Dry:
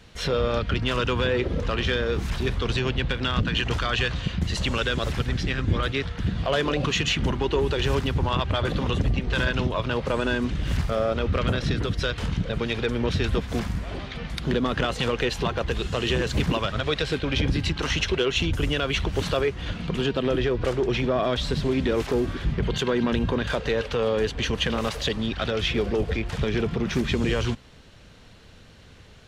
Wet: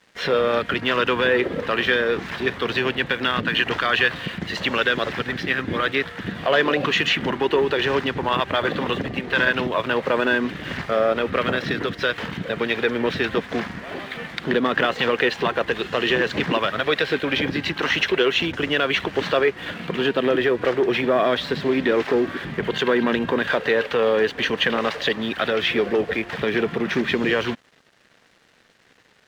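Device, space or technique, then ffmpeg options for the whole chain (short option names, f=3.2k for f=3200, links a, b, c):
pocket radio on a weak battery: -af "highpass=250,lowpass=3.6k,aeval=exprs='sgn(val(0))*max(abs(val(0))-0.002,0)':c=same,equalizer=f=1.8k:t=o:w=0.43:g=6,volume=5.5dB"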